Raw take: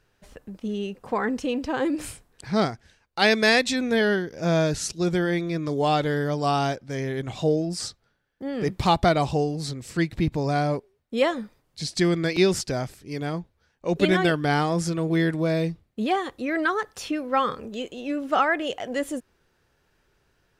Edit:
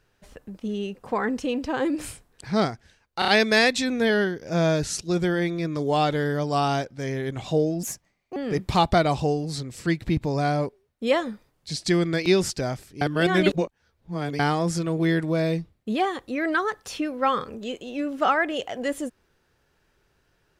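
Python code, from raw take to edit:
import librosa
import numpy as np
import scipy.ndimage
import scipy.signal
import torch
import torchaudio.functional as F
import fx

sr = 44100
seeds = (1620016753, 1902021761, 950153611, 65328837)

y = fx.edit(x, sr, fx.stutter(start_s=3.19, slice_s=0.03, count=4),
    fx.speed_span(start_s=7.74, length_s=0.73, speed=1.37),
    fx.reverse_span(start_s=13.12, length_s=1.38), tone=tone)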